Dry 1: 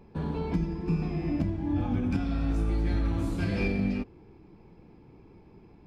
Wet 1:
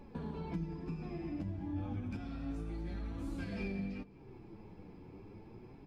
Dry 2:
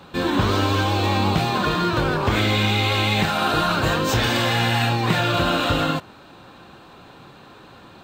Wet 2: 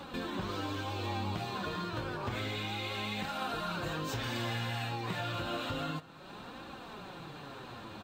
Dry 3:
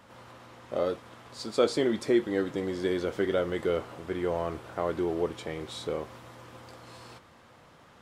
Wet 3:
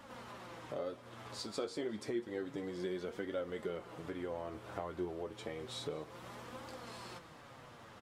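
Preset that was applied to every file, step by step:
downward compressor 2.5 to 1, threshold −44 dBFS
flanger 0.3 Hz, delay 3.4 ms, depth 7.7 ms, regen +37%
single-tap delay 205 ms −21.5 dB
level +4.5 dB

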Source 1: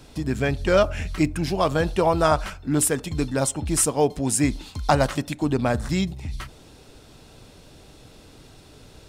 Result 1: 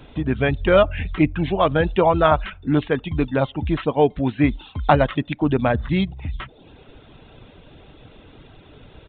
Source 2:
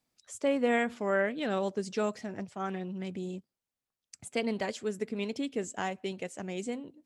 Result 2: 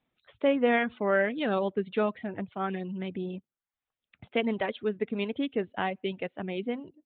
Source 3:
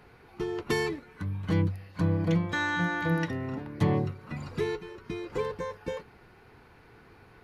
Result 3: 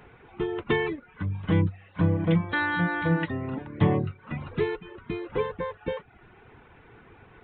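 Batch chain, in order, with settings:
reverb reduction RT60 0.53 s
downsampling to 8,000 Hz
level +4 dB

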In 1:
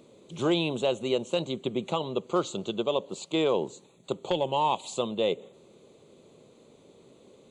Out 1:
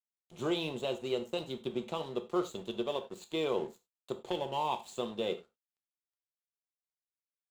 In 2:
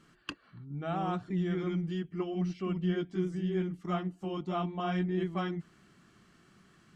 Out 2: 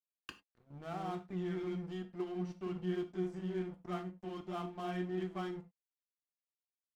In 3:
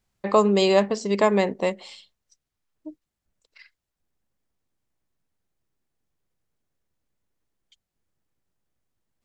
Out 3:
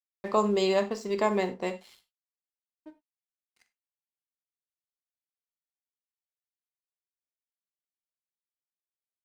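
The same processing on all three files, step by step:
dead-zone distortion −44.5 dBFS
reverb whose tail is shaped and stops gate 120 ms falling, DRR 6.5 dB
level −7 dB

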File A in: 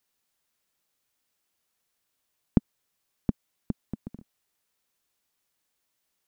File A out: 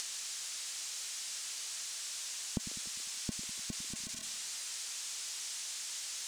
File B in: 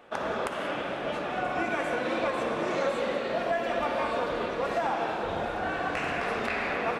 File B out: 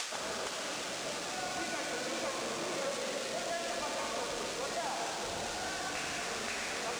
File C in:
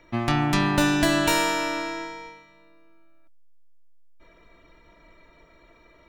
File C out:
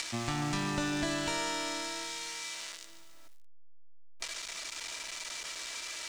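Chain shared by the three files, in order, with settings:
spike at every zero crossing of −14.5 dBFS
downward compressor 6 to 1, threshold −30 dBFS
low-pass filter 7,600 Hz 24 dB per octave
on a send: echo with a time of its own for lows and highs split 350 Hz, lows 100 ms, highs 143 ms, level −12.5 dB
on the sum: bit-depth reduction 10 bits, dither none

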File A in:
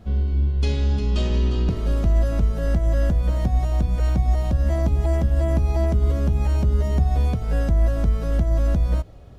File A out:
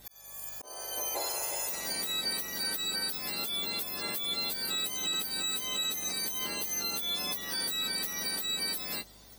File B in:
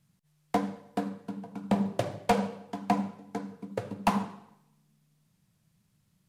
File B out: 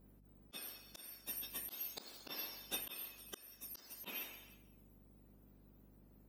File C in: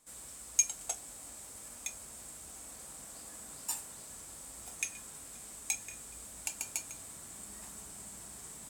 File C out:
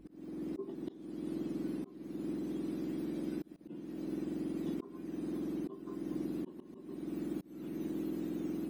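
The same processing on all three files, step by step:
frequency axis turned over on the octave scale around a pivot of 1,600 Hz
mains hum 50 Hz, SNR 28 dB
volume swells 451 ms
brickwall limiter −26.5 dBFS
level +2.5 dB

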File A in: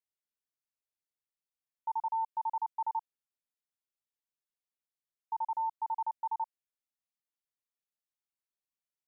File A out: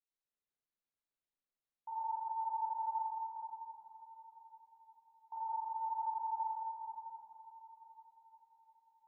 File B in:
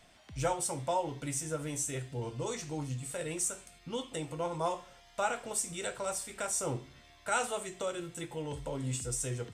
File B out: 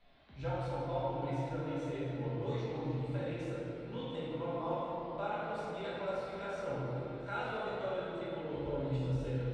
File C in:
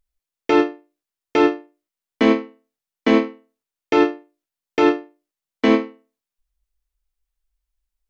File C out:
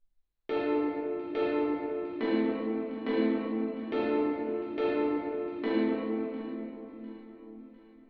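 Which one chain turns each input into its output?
parametric band 4,000 Hz +11 dB 0.29 octaves
mains-hum notches 50/100/150/200 Hz
downward compressor 2 to 1, threshold −32 dBFS
high-frequency loss of the air 340 metres
delay that swaps between a low-pass and a high-pass 351 ms, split 900 Hz, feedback 67%, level −13 dB
rectangular room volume 150 cubic metres, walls hard, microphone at 1.2 metres
level −9 dB

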